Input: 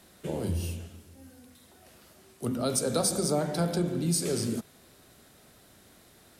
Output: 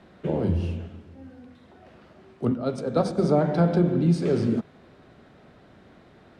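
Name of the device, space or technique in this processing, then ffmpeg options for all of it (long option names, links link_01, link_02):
phone in a pocket: -filter_complex "[0:a]asplit=3[link_01][link_02][link_03];[link_01]afade=type=out:start_time=2.53:duration=0.02[link_04];[link_02]agate=range=-8dB:threshold=-26dB:ratio=16:detection=peak,afade=type=in:start_time=2.53:duration=0.02,afade=type=out:start_time=3.17:duration=0.02[link_05];[link_03]afade=type=in:start_time=3.17:duration=0.02[link_06];[link_04][link_05][link_06]amix=inputs=3:normalize=0,lowpass=3100,equalizer=frequency=160:width_type=o:width=1.4:gain=3,lowshelf=frequency=190:gain=-4,highshelf=frequency=2200:gain=-9,volume=7.5dB"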